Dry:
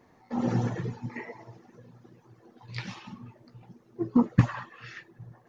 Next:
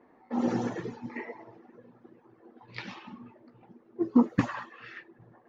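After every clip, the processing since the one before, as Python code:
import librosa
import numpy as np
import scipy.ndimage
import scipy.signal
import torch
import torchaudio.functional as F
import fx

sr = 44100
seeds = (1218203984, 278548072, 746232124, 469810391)

y = fx.env_lowpass(x, sr, base_hz=2000.0, full_db=-24.5)
y = fx.low_shelf_res(y, sr, hz=190.0, db=-9.5, q=1.5)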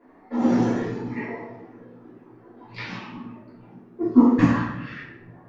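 y = fx.room_shoebox(x, sr, seeds[0], volume_m3=200.0, walls='mixed', distance_m=3.1)
y = y * librosa.db_to_amplitude(-3.0)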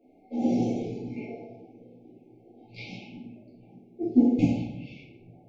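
y = fx.brickwall_bandstop(x, sr, low_hz=850.0, high_hz=2100.0)
y = y * librosa.db_to_amplitude(-5.0)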